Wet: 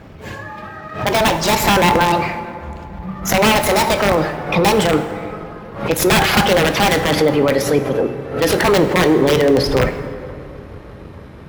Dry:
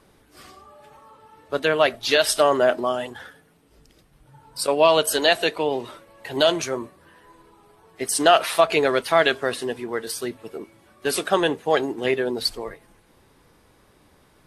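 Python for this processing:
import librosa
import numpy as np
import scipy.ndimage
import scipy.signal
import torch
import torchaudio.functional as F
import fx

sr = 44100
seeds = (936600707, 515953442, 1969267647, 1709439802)

p1 = fx.speed_glide(x, sr, from_pct=146, to_pct=106)
p2 = fx.high_shelf(p1, sr, hz=5800.0, db=-9.0)
p3 = fx.over_compress(p2, sr, threshold_db=-30.0, ratio=-1.0)
p4 = p2 + (p3 * librosa.db_to_amplitude(0.0))
p5 = (np.mod(10.0 ** (11.5 / 20.0) * p4 + 1.0, 2.0) - 1.0) / 10.0 ** (11.5 / 20.0)
p6 = scipy.signal.sosfilt(scipy.signal.butter(2, 45.0, 'highpass', fs=sr, output='sos'), p5)
p7 = fx.echo_wet_lowpass(p6, sr, ms=157, feedback_pct=84, hz=1600.0, wet_db=-23)
p8 = fx.leveller(p7, sr, passes=1)
p9 = fx.bass_treble(p8, sr, bass_db=11, treble_db=-8)
p10 = fx.rev_plate(p9, sr, seeds[0], rt60_s=2.1, hf_ratio=0.5, predelay_ms=0, drr_db=8.0)
p11 = fx.pre_swell(p10, sr, db_per_s=110.0)
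y = p11 * librosa.db_to_amplitude(2.5)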